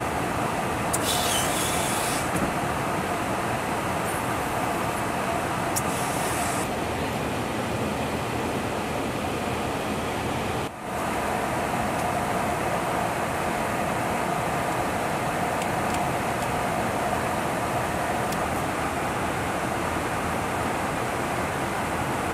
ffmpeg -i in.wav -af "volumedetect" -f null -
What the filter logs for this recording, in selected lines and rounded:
mean_volume: -26.5 dB
max_volume: -9.9 dB